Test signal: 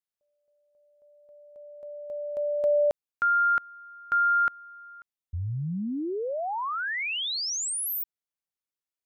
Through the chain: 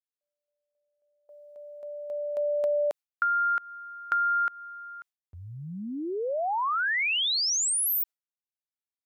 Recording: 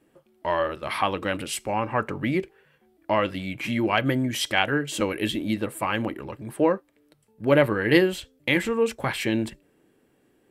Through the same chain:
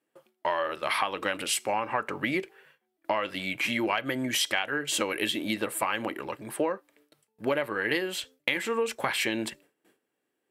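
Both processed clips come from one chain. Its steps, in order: gate with hold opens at -51 dBFS, closes at -57 dBFS, hold 44 ms, range -17 dB; HPF 690 Hz 6 dB/oct; compressor 12:1, threshold -29 dBFS; gain +5.5 dB

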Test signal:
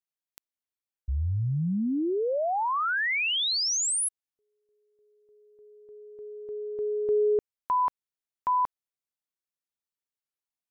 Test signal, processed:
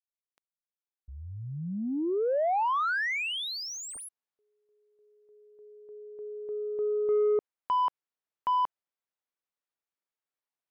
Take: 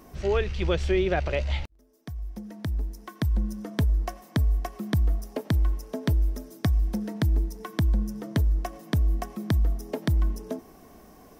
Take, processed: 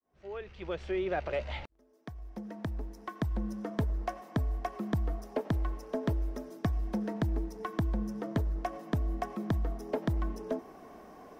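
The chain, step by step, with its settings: opening faded in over 2.48 s; overdrive pedal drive 18 dB, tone 1000 Hz, clips at -11.5 dBFS; gain -5 dB

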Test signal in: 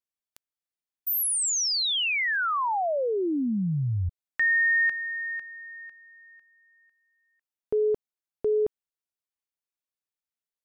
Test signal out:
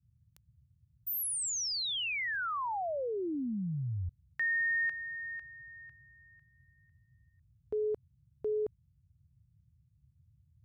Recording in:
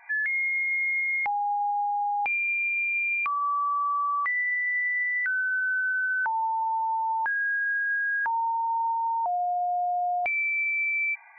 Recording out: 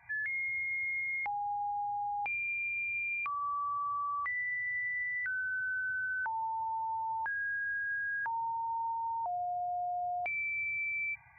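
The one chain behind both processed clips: band noise 54–140 Hz -58 dBFS; gain -8.5 dB

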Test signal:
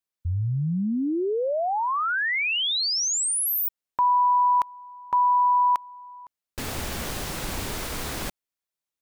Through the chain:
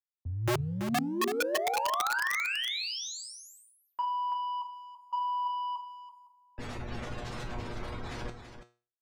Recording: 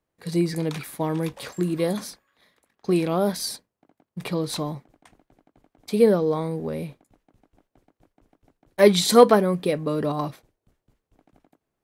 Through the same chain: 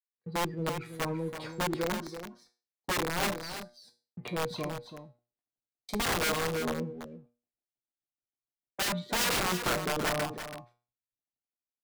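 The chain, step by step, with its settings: spectral gate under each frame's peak -20 dB strong; gate -44 dBFS, range -26 dB; treble ducked by the level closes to 1400 Hz, closed at -20 dBFS; in parallel at +2.5 dB: compressor 6:1, threshold -38 dBFS; on the sum: sample leveller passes 1; soft clip -8.5 dBFS; resonator 120 Hz, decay 0.38 s, harmonics all, mix 80%; wrapped overs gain 23 dB; on a send: echo 0.332 s -7.5 dB; on the sum: three-band expander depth 40%; gain -2 dB

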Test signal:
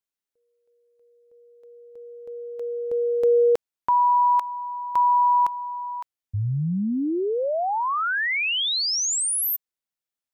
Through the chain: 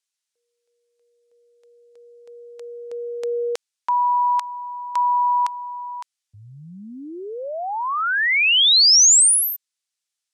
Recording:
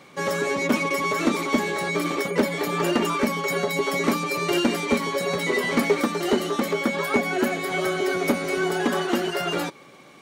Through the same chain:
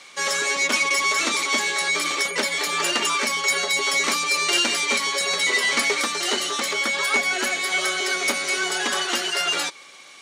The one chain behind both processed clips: weighting filter ITU-R 468

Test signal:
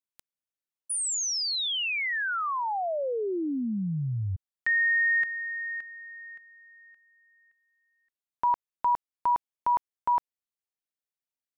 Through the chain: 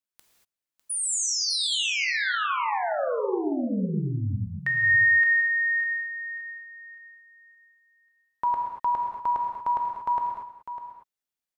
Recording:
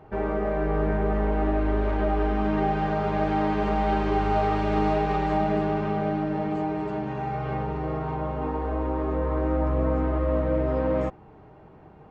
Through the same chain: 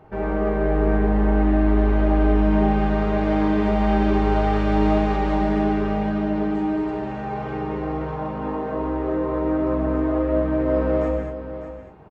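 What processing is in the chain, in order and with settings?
echo 0.601 s -11.5 dB; non-linear reverb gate 0.26 s flat, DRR 1 dB

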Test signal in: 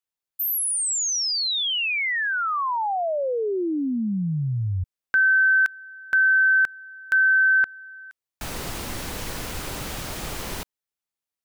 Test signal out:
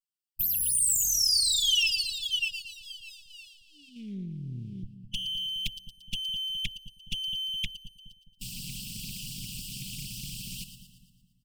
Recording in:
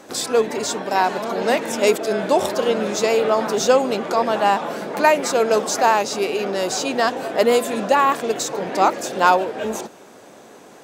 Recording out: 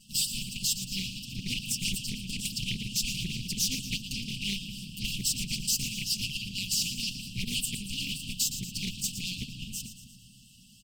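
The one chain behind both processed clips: minimum comb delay 5.6 ms; ripple EQ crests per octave 1.3, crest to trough 8 dB; harmonic-percussive split harmonic -13 dB; low shelf 61 Hz -4 dB; comb 6.9 ms, depth 44%; in parallel at +2 dB: level quantiser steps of 15 dB; on the sum: soft clip -14 dBFS; brick-wall FIR band-stop 270–2600 Hz; split-band echo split 1400 Hz, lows 0.209 s, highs 0.115 s, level -10 dB; Doppler distortion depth 0.35 ms; gain -3 dB

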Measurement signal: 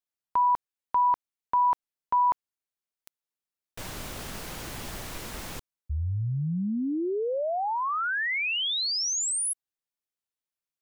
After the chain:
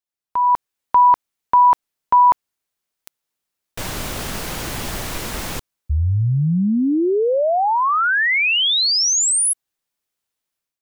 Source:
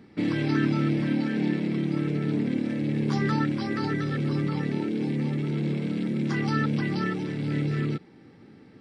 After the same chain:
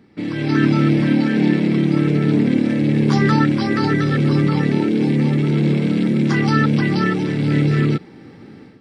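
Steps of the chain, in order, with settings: AGC gain up to 11 dB

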